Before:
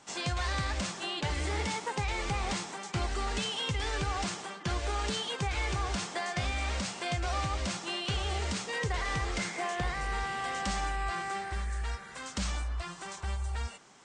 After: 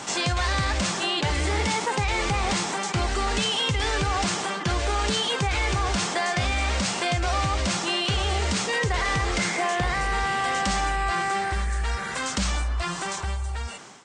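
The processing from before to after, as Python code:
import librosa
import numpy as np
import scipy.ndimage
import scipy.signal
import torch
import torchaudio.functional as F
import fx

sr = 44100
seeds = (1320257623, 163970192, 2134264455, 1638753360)

y = fx.fade_out_tail(x, sr, length_s=1.29)
y = scipy.signal.sosfilt(scipy.signal.butter(2, 49.0, 'highpass', fs=sr, output='sos'), y)
y = fx.env_flatten(y, sr, amount_pct=50)
y = y * librosa.db_to_amplitude(6.5)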